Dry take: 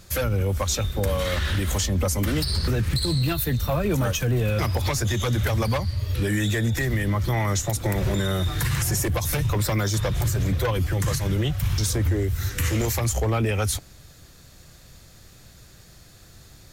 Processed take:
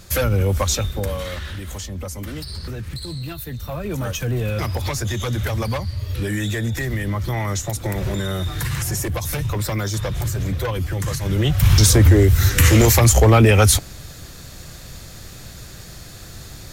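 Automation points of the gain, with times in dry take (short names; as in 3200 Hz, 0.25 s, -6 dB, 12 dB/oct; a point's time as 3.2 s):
0.65 s +5 dB
1.55 s -7 dB
3.5 s -7 dB
4.26 s 0 dB
11.18 s 0 dB
11.71 s +11 dB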